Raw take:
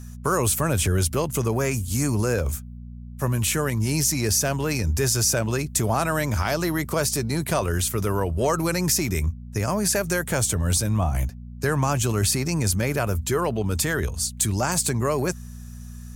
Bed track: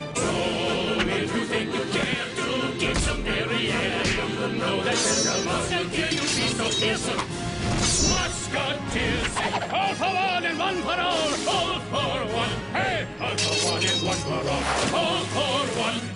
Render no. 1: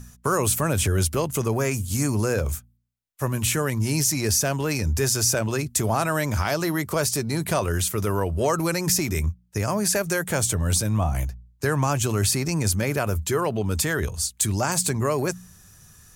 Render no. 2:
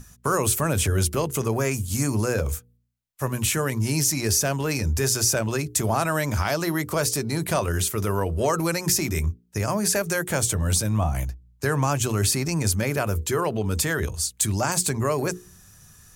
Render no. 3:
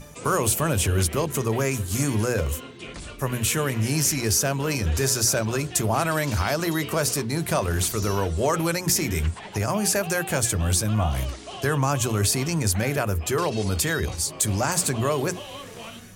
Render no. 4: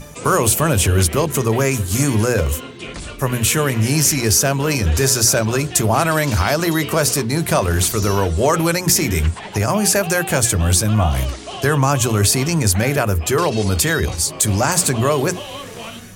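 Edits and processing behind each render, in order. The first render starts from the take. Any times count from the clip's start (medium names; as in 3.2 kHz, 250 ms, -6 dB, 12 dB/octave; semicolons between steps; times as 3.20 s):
de-hum 60 Hz, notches 4
hum notches 60/120/180/240/300/360/420/480 Hz
add bed track -14 dB
trim +7 dB; peak limiter -2 dBFS, peak gain reduction 1 dB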